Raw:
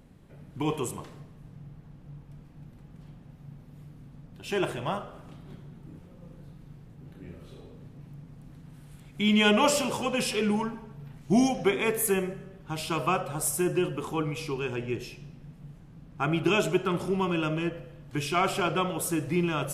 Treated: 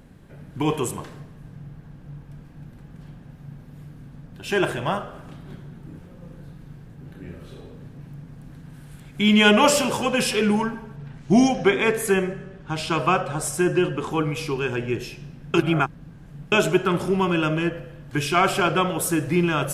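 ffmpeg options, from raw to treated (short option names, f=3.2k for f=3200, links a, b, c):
-filter_complex "[0:a]asettb=1/sr,asplit=3[a][b][c];[a]atrim=end=10.964[d];[b]atrim=start=10.96:end=14.11,asetpts=PTS-STARTPTS,afade=t=in:d=0.004:c=qsin,afade=t=out:st=3.146:d=0.004:c=qsin,lowpass=7.4k[e];[c]atrim=start=14.106[f];[d][e]acrossfade=d=0.004:c1=hsin:c2=qsin[g];[g][f]acrossfade=d=0.004:c1=qsin:c2=hsin,asplit=3[h][i][j];[h]atrim=end=15.542[k];[i]atrim=start=15.538:end=16.522,asetpts=PTS-STARTPTS,areverse[l];[j]atrim=start=16.518[m];[k][l]acrossfade=d=0.004:c1=hsin:c2=hsin[n];[n][m]acrossfade=d=0.004:c1=hsin:c2=hsin,equalizer=f=1.6k:w=6.1:g=6.5,volume=6dB"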